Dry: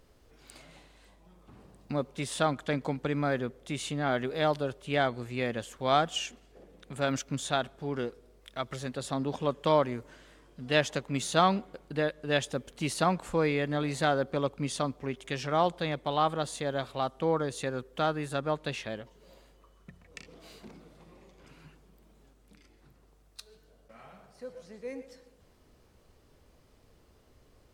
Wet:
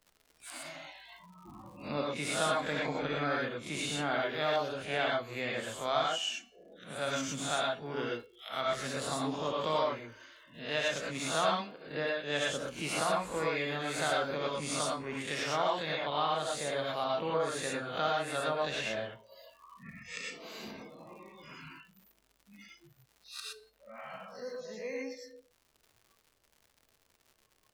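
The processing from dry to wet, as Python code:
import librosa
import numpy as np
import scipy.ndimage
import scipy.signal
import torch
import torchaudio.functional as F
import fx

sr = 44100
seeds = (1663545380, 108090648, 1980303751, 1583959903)

y = fx.spec_swells(x, sr, rise_s=0.36)
y = fx.high_shelf(y, sr, hz=5000.0, db=5.5, at=(13.57, 15.58))
y = fx.rev_gated(y, sr, seeds[0], gate_ms=140, shape='rising', drr_db=-3.0)
y = fx.noise_reduce_blind(y, sr, reduce_db=25)
y = fx.low_shelf(y, sr, hz=430.0, db=-7.0)
y = fx.dmg_crackle(y, sr, seeds[1], per_s=160.0, level_db=-58.0)
y = fx.rider(y, sr, range_db=4, speed_s=2.0)
y = fx.comb_fb(y, sr, f0_hz=110.0, decay_s=0.43, harmonics='all', damping=0.0, mix_pct=40)
y = fx.band_squash(y, sr, depth_pct=40)
y = y * 10.0 ** (-2.0 / 20.0)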